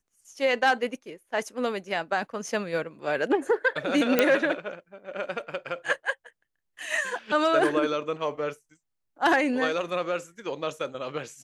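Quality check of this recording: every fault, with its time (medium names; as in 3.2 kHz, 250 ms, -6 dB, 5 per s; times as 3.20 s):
4.19 s: pop -6 dBFS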